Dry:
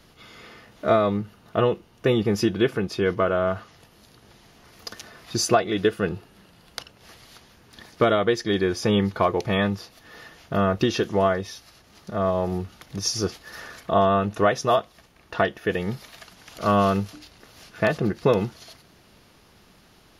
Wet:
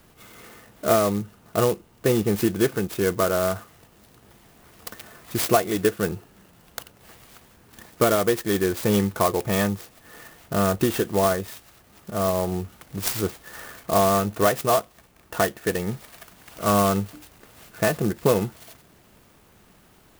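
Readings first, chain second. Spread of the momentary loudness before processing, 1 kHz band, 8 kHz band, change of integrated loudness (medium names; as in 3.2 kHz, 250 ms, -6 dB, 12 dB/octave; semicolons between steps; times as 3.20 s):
17 LU, -0.5 dB, +4.0 dB, 0.0 dB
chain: sampling jitter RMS 0.059 ms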